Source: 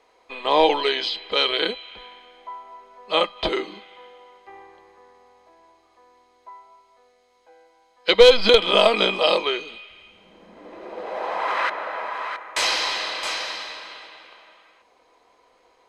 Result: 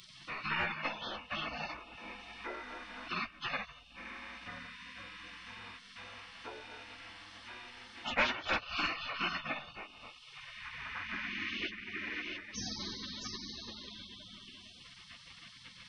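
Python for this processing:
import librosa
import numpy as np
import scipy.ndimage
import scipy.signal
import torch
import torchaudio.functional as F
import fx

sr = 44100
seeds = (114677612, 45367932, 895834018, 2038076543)

y = fx.partial_stretch(x, sr, pct=82)
y = fx.spec_gate(y, sr, threshold_db=-25, keep='weak')
y = fx.band_squash(y, sr, depth_pct=70)
y = F.gain(torch.from_numpy(y), 9.0).numpy()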